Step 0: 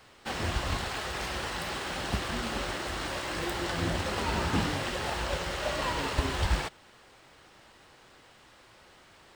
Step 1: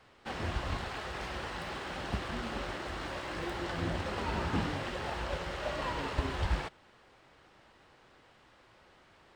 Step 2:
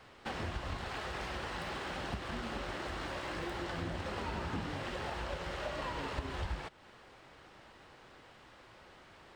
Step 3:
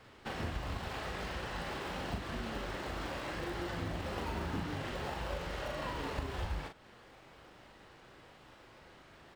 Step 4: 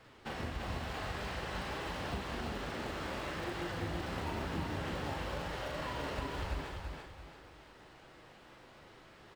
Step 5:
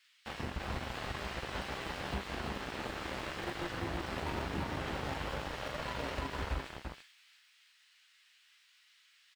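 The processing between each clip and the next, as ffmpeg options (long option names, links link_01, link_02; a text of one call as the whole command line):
ffmpeg -i in.wav -af "lowpass=frequency=2800:poles=1,volume=-3.5dB" out.wav
ffmpeg -i in.wav -af "acompressor=threshold=-42dB:ratio=3,volume=4dB" out.wav
ffmpeg -i in.wav -filter_complex "[0:a]asplit=2[link_01][link_02];[link_02]acrusher=samples=28:mix=1:aa=0.000001:lfo=1:lforange=16.8:lforate=0.91,volume=-10dB[link_03];[link_01][link_03]amix=inputs=2:normalize=0,asplit=2[link_04][link_05];[link_05]adelay=40,volume=-5.5dB[link_06];[link_04][link_06]amix=inputs=2:normalize=0,volume=-2dB" out.wav
ffmpeg -i in.wav -af "flanger=delay=6:depth=10:regen=61:speed=1.1:shape=sinusoidal,aecho=1:1:340|680|1020|1360:0.631|0.215|0.0729|0.0248,volume=3dB" out.wav
ffmpeg -i in.wav -filter_complex "[0:a]acrossover=split=2000[link_01][link_02];[link_01]acrusher=bits=5:mix=0:aa=0.5[link_03];[link_03][link_02]amix=inputs=2:normalize=0,asplit=2[link_04][link_05];[link_05]adelay=15,volume=-11dB[link_06];[link_04][link_06]amix=inputs=2:normalize=0" out.wav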